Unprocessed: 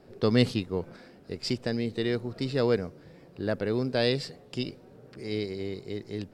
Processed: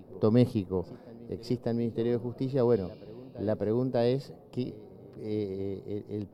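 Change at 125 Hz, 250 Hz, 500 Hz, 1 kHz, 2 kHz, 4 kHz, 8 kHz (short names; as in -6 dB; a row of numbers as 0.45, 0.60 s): 0.0 dB, 0.0 dB, 0.0 dB, -1.0 dB, -12.5 dB, -13.5 dB, n/a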